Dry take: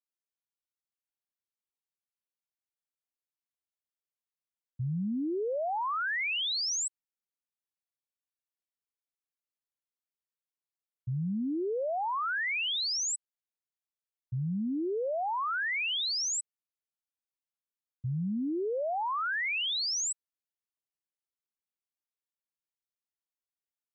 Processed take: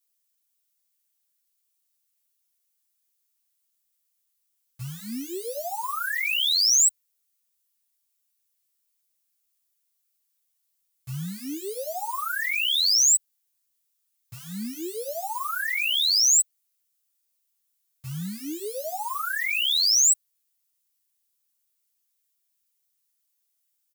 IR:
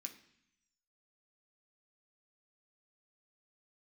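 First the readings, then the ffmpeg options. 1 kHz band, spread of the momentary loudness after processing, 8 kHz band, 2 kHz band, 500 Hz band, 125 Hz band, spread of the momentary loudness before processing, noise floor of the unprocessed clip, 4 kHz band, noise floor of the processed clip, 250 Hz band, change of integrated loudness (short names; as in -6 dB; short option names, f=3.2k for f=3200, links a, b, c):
0.0 dB, 18 LU, +13.5 dB, +4.0 dB, -2.0 dB, -3.0 dB, 8 LU, under -85 dBFS, +9.0 dB, -75 dBFS, -2.5 dB, +9.0 dB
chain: -filter_complex "[0:a]asplit=2[a][b];[b]aeval=exprs='(mod(188*val(0)+1,2)-1)/188':c=same,volume=-6dB[c];[a][c]amix=inputs=2:normalize=0,crystalizer=i=6.5:c=0,asplit=2[d][e];[e]adelay=10.7,afreqshift=2.6[f];[d][f]amix=inputs=2:normalize=1"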